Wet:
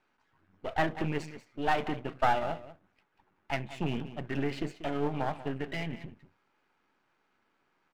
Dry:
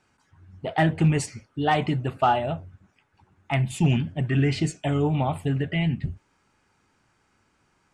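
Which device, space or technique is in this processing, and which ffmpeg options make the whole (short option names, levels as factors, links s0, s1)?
crystal radio: -filter_complex "[0:a]asettb=1/sr,asplit=3[s0][s1][s2];[s0]atrim=end=3.904[s3];[s1]atrim=start=3.9:end=4.68,asetpts=PTS-STARTPTS,afade=t=in:d=0.004:c=qsin,afade=t=out:st=0.776:d=0.004:c=qsin,equalizer=f=2300:w=2.5:g=-4.5[s4];[s2]atrim=start=4.676[s5];[s3][s4]acrossfade=d=0.004:c1=hsin:c2=qsin[s6];[s6][s5]acrossfade=d=0.004:c1=qsin:c2=hsin,highpass=260,lowpass=3100,aecho=1:1:188:0.2,aeval=exprs='if(lt(val(0),0),0.251*val(0),val(0))':c=same,volume=0.794"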